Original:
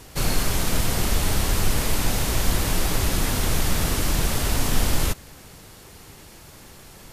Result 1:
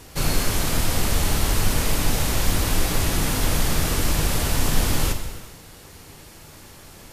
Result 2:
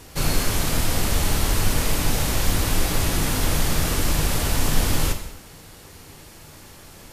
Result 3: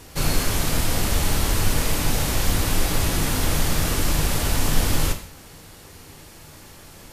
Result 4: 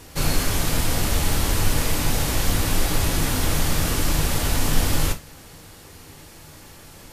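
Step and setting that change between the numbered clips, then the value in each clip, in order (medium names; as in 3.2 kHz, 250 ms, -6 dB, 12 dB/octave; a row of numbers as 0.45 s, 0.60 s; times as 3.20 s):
gated-style reverb, gate: 480 ms, 300 ms, 200 ms, 90 ms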